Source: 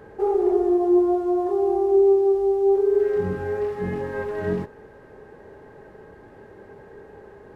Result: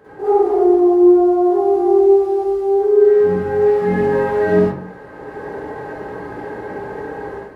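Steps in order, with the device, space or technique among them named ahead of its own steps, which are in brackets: far laptop microphone (reverberation RT60 0.45 s, pre-delay 45 ms, DRR -10 dB; high-pass 170 Hz 6 dB/octave; level rider gain up to 10 dB); trim -2.5 dB

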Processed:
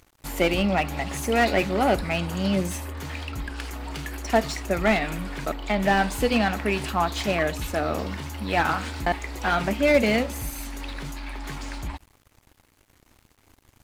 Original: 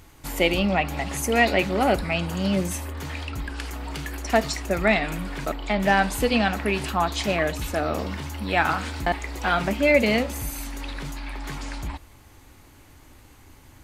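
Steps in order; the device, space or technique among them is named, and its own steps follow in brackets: early transistor amplifier (crossover distortion -48.5 dBFS; slew-rate limiter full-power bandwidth 190 Hz)

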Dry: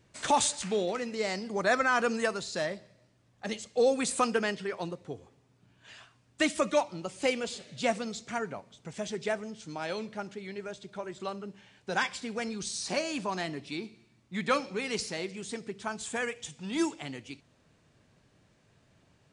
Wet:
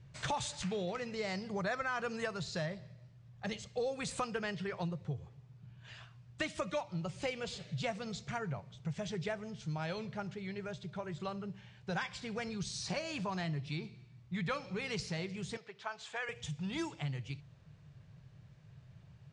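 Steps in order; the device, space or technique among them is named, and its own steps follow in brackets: jukebox (low-pass 5.7 kHz 12 dB/octave; resonant low shelf 190 Hz +9 dB, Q 3; compression 3:1, threshold -33 dBFS, peak gain reduction 9.5 dB); 15.57–16.29 s: three-band isolator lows -23 dB, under 460 Hz, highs -16 dB, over 5.8 kHz; trim -2 dB

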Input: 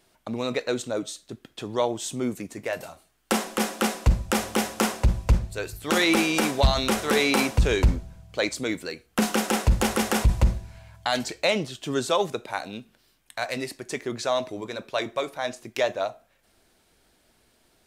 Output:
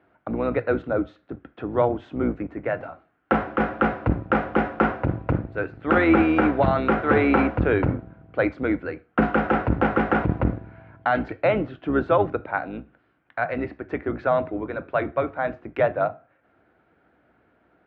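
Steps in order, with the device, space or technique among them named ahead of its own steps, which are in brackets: sub-octave bass pedal (octave divider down 2 oct, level +3 dB; cabinet simulation 74–2200 Hz, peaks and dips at 78 Hz -7 dB, 300 Hz +8 dB, 510 Hz +4 dB, 730 Hz +5 dB, 1.4 kHz +9 dB)

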